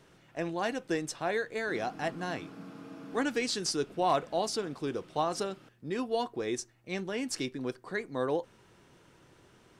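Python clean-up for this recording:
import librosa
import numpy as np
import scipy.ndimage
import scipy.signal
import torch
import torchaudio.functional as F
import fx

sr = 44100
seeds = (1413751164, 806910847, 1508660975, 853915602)

y = fx.fix_declip(x, sr, threshold_db=-17.0)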